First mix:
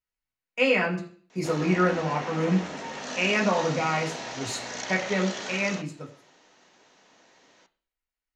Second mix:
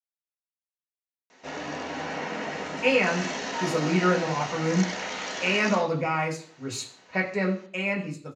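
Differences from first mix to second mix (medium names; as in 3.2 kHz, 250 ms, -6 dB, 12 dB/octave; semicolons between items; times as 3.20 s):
speech: entry +2.25 s; background: send +8.0 dB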